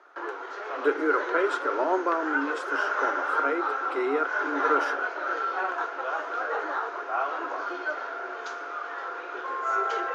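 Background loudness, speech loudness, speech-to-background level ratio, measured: -30.0 LUFS, -29.0 LUFS, 1.0 dB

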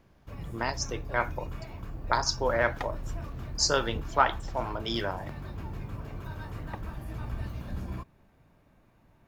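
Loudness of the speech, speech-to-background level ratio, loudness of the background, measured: -29.5 LUFS, 10.5 dB, -40.0 LUFS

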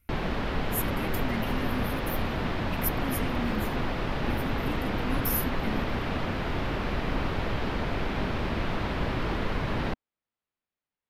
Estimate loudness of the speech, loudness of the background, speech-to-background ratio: -36.0 LUFS, -31.0 LUFS, -5.0 dB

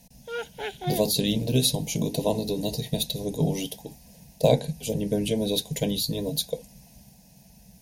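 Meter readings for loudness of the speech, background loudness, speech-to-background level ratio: -26.5 LUFS, -35.0 LUFS, 8.5 dB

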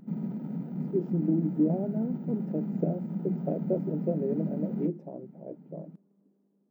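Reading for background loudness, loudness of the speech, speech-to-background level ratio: -34.5 LUFS, -32.0 LUFS, 2.5 dB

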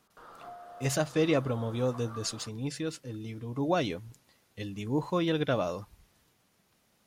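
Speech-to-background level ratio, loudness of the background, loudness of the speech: 16.5 dB, -48.5 LUFS, -32.0 LUFS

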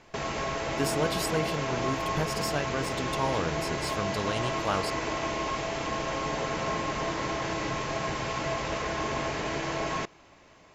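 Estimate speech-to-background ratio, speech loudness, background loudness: -2.0 dB, -33.0 LUFS, -31.0 LUFS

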